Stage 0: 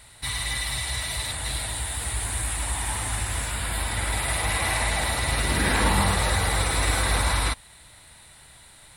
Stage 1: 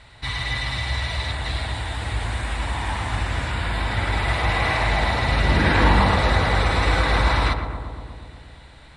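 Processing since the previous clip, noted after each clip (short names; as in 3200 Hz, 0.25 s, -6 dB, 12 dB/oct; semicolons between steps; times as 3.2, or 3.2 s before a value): air absorption 160 m; on a send: darkening echo 0.119 s, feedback 77%, low-pass 1600 Hz, level -7 dB; on the sum: gain +5 dB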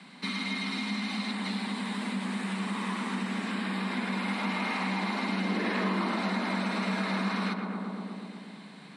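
compressor 2.5:1, threshold -29 dBFS, peak gain reduction 11.5 dB; frequency shift +140 Hz; gain -2.5 dB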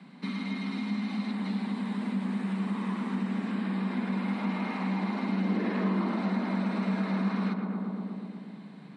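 tilt -3 dB/oct; gain -4 dB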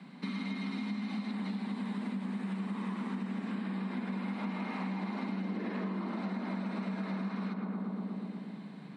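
compressor, threshold -33 dBFS, peak gain reduction 9 dB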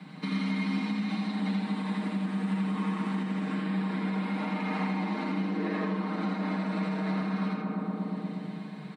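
comb 6.5 ms, depth 92%; echo 82 ms -3.5 dB; gain +2.5 dB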